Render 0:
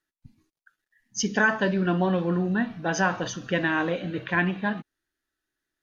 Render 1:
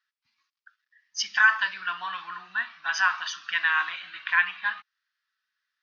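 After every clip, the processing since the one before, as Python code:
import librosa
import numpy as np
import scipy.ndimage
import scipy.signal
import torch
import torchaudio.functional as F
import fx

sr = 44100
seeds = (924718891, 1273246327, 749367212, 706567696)

y = scipy.signal.sosfilt(scipy.signal.ellip(3, 1.0, 40, [1100.0, 5300.0], 'bandpass', fs=sr, output='sos'), x)
y = F.gain(torch.from_numpy(y), 5.0).numpy()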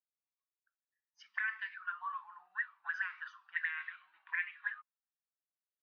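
y = fx.auto_wah(x, sr, base_hz=630.0, top_hz=2100.0, q=9.5, full_db=-22.0, direction='up')
y = F.gain(torch.from_numpy(y), -3.5).numpy()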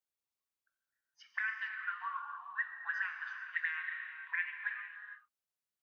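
y = fx.rev_gated(x, sr, seeds[0], gate_ms=480, shape='flat', drr_db=4.5)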